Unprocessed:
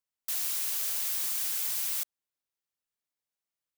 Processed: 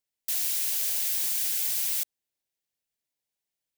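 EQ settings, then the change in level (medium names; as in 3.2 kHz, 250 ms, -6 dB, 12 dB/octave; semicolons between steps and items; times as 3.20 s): peaking EQ 1.2 kHz -11.5 dB 0.53 oct; +3.5 dB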